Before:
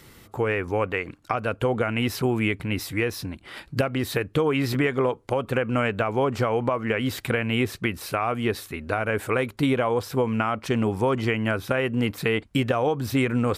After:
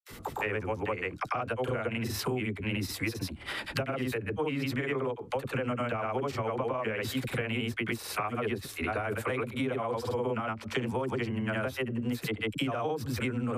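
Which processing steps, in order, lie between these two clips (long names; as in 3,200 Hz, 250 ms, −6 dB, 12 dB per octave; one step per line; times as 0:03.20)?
granular cloud, spray 100 ms, pitch spread up and down by 0 semitones
all-pass dispersion lows, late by 46 ms, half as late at 410 Hz
downward compressor 6 to 1, threshold −35 dBFS, peak gain reduction 15.5 dB
level +5.5 dB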